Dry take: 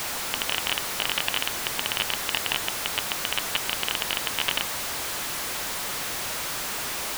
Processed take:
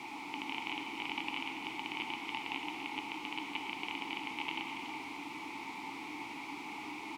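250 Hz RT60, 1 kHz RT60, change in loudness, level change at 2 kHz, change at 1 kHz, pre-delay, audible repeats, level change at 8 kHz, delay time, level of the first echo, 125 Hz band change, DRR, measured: 3.7 s, 2.7 s, −13.5 dB, −10.0 dB, −7.0 dB, 7 ms, 1, −28.5 dB, 283 ms, −9.5 dB, −15.5 dB, 2.0 dB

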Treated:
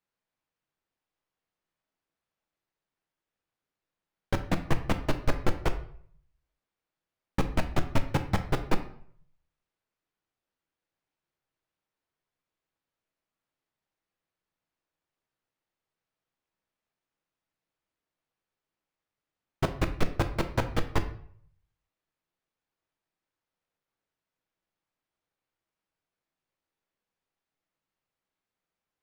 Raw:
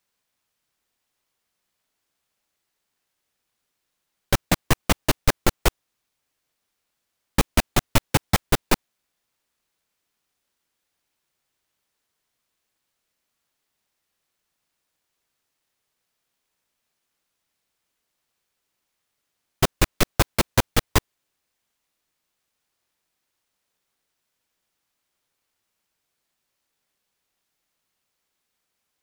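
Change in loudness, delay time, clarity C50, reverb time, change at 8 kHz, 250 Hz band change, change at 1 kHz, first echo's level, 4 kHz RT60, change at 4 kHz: −8.5 dB, no echo audible, 12.0 dB, 0.60 s, −19.0 dB, −5.5 dB, −7.5 dB, no echo audible, 0.45 s, −13.5 dB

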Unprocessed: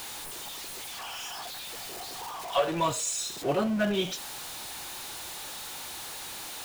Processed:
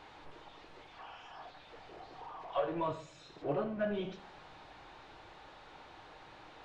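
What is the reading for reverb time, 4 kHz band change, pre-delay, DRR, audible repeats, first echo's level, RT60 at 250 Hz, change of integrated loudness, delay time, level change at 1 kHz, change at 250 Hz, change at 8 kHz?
0.55 s, −19.0 dB, 6 ms, 8.0 dB, no echo audible, no echo audible, 0.95 s, −7.0 dB, no echo audible, −8.5 dB, −9.5 dB, below −30 dB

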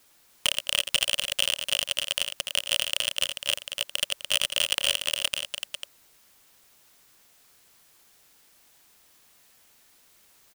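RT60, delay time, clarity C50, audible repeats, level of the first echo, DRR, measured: no reverb audible, 85 ms, no reverb audible, 3, −15.0 dB, no reverb audible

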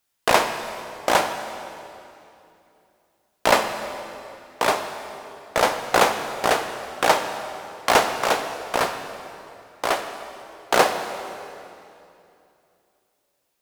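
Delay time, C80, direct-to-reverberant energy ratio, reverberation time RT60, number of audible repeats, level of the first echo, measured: no echo audible, 8.5 dB, 6.5 dB, 2.7 s, no echo audible, no echo audible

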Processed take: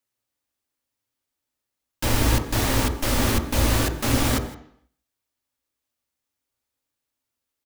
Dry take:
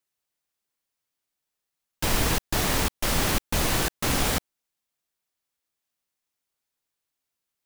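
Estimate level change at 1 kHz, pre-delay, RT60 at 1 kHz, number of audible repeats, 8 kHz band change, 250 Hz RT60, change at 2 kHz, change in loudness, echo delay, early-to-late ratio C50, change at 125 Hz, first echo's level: +1.5 dB, 3 ms, 0.70 s, 1, 0.0 dB, 0.65 s, +0.5 dB, +2.5 dB, 162 ms, 9.0 dB, +6.5 dB, −18.5 dB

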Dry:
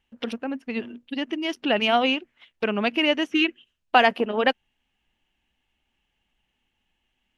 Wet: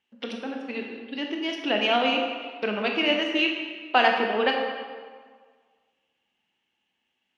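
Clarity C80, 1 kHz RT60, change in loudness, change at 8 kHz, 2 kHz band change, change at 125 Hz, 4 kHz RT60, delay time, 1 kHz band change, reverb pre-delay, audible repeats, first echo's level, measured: 4.5 dB, 1.7 s, −1.5 dB, can't be measured, −0.5 dB, can't be measured, 1.2 s, no echo audible, −1.5 dB, 15 ms, no echo audible, no echo audible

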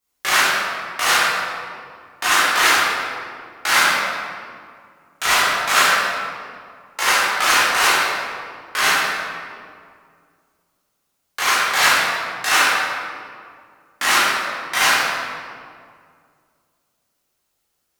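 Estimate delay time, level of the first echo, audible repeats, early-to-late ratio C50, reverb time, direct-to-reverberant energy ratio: no echo audible, no echo audible, no echo audible, −4.0 dB, 2.1 s, −12.0 dB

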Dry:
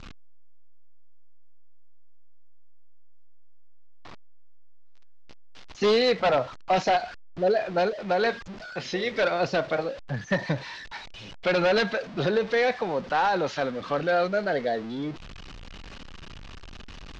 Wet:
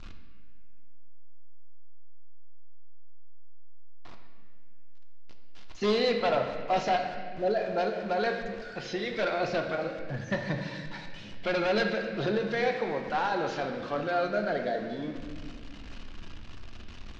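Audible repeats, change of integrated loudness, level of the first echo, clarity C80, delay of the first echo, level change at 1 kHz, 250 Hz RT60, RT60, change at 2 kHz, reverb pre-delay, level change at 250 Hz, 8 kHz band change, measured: no echo audible, −4.5 dB, no echo audible, 6.5 dB, no echo audible, −4.0 dB, 3.0 s, 1.9 s, −4.0 dB, 3 ms, −2.0 dB, can't be measured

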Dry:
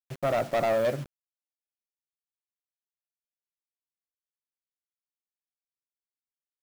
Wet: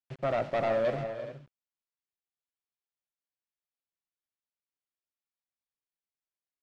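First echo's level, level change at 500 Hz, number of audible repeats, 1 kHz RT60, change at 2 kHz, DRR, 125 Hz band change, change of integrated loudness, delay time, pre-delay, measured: −16.5 dB, −2.5 dB, 4, no reverb audible, −2.5 dB, no reverb audible, −2.5 dB, −4.0 dB, 84 ms, no reverb audible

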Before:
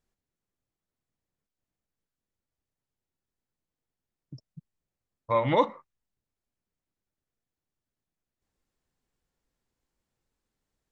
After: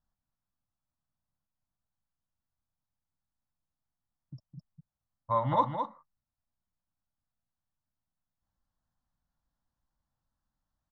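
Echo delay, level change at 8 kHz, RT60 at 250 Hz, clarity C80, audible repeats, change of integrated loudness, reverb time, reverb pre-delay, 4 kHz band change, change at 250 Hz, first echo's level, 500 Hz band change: 211 ms, can't be measured, no reverb audible, no reverb audible, 1, −4.0 dB, no reverb audible, no reverb audible, −9.5 dB, −5.5 dB, −7.0 dB, −7.5 dB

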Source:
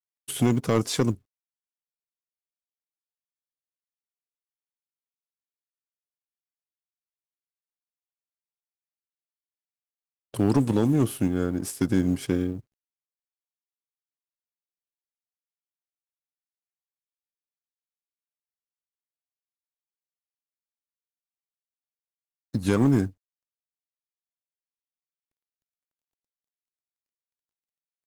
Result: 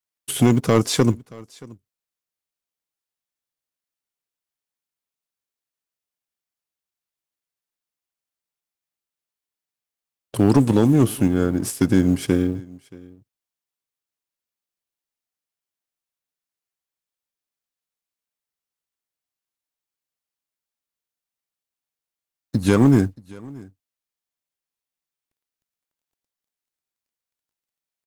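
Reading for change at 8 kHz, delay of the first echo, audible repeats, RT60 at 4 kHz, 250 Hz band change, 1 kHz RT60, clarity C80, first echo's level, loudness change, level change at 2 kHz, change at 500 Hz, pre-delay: +6.0 dB, 627 ms, 1, no reverb audible, +6.0 dB, no reverb audible, no reverb audible, −23.0 dB, +6.0 dB, +6.0 dB, +6.0 dB, no reverb audible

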